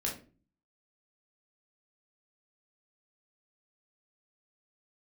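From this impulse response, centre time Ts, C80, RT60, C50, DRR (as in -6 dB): 25 ms, 14.0 dB, 0.35 s, 7.5 dB, -2.5 dB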